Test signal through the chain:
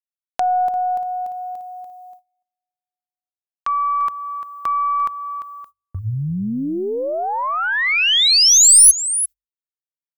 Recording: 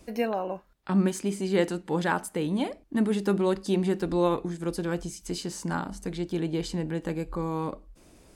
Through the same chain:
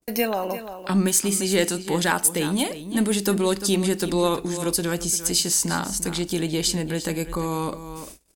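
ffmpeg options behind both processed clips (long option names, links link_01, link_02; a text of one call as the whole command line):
ffmpeg -i in.wav -filter_complex "[0:a]aecho=1:1:346:0.2,agate=range=-37dB:threshold=-50dB:ratio=16:detection=peak,aemphasis=mode=production:type=75kf,asplit=2[link_01][link_02];[link_02]acompressor=threshold=-34dB:ratio=6,volume=1.5dB[link_03];[link_01][link_03]amix=inputs=2:normalize=0,aeval=exprs='0.501*(cos(1*acos(clip(val(0)/0.501,-1,1)))-cos(1*PI/2))+0.0447*(cos(2*acos(clip(val(0)/0.501,-1,1)))-cos(2*PI/2))+0.01*(cos(5*acos(clip(val(0)/0.501,-1,1)))-cos(5*PI/2))+0.00398*(cos(7*acos(clip(val(0)/0.501,-1,1)))-cos(7*PI/2))':channel_layout=same,bandreject=frequency=50:width_type=h:width=6,bandreject=frequency=100:width_type=h:width=6,adynamicequalizer=threshold=0.0126:dfrequency=1900:dqfactor=0.7:tfrequency=1900:tqfactor=0.7:attack=5:release=100:ratio=0.375:range=2:mode=boostabove:tftype=highshelf" out.wav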